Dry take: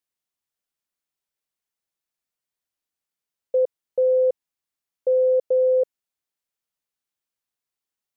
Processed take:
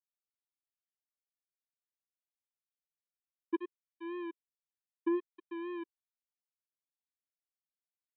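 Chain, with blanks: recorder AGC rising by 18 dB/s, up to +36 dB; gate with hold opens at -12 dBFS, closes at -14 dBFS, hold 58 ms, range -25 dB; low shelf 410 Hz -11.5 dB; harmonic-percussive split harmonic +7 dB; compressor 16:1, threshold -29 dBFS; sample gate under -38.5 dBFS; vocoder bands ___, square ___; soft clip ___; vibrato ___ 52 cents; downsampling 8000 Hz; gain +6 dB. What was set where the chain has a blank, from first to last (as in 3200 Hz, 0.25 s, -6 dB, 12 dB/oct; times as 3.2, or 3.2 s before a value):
4, 345 Hz, -32 dBFS, 3.9 Hz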